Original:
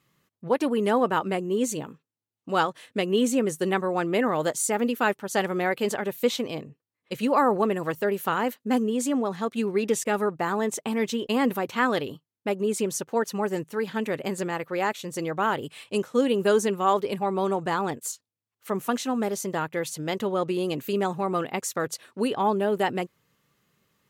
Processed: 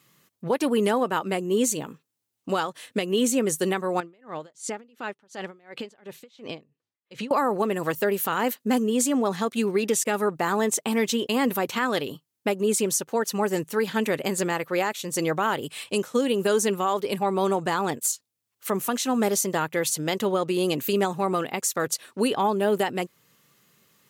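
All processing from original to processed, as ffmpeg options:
-filter_complex "[0:a]asettb=1/sr,asplit=3[s0][s1][s2];[s0]atrim=end=4.004[s3];[s1]atrim=start=4:end=7.31,asetpts=PTS-STARTPTS,afade=t=in:d=0.004:c=qsin,afade=t=out:st=3.306:d=0.004:c=qsin,lowpass=4900,acompressor=threshold=0.0224:ratio=5:attack=3.2:release=140:knee=1:detection=peak,aeval=exprs='val(0)*pow(10,-28*(0.5-0.5*cos(2*PI*2.8*n/s))/20)':c=same[s4];[s2]atrim=start=7.306[s5];[s3][s4]acrossfade=d=0.004:c1=hsin:c2=qsin[s6];[s6][s5]acrossfade=d=0.004:c1=qsin:c2=hsin,highpass=110,highshelf=f=3800:g=8,alimiter=limit=0.119:level=0:latency=1:release=418,volume=1.78"

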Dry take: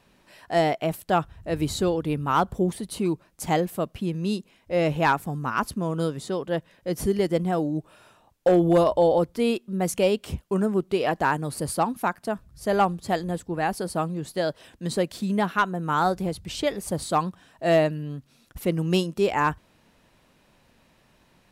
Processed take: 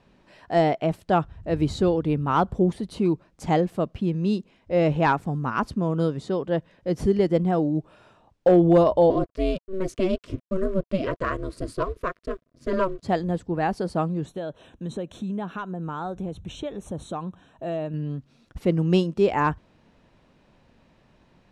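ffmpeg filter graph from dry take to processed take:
-filter_complex "[0:a]asettb=1/sr,asplit=3[s0][s1][s2];[s0]atrim=end=9.104[s3];[s1]atrim=start=9.1:end=13.03,asetpts=PTS-STARTPTS,afade=t=in:d=0.004:c=qsin,afade=t=out:st=3.926:d=0.004:c=qsin,aeval=exprs='val(0)*sin(2*PI*190*n/s)':c=same,aeval=exprs='sgn(val(0))*max(abs(val(0))-0.00299,0)':c=same,asuperstop=centerf=820:order=8:qfactor=3[s4];[s2]atrim=start=13.026[s5];[s3][s4]acrossfade=d=0.004:c1=hsin:c2=qsin[s6];[s6][s5]acrossfade=d=0.004:c1=qsin:c2=hsin,asettb=1/sr,asplit=3[s7][s8][s9];[s7]atrim=end=14.264[s10];[s8]atrim=start=14.26:end=17.94,asetpts=PTS-STARTPTS,afade=t=in:d=0.004:c=qsin,afade=t=out:st=3.676:d=0.004:c=qsin,equalizer=f=2000:w=6.9:g=-10,acompressor=threshold=0.0224:ratio=2.5:attack=3.2:release=140:knee=1:detection=peak,asuperstop=centerf=4800:order=8:qfactor=3.3[s11];[s9]atrim=start=17.936[s12];[s10][s11]acrossfade=d=0.004:c1=hsin:c2=qsin[s13];[s13][s12]acrossfade=d=0.004:c1=qsin:c2=hsin,lowpass=5900,tiltshelf=f=970:g=3.5"

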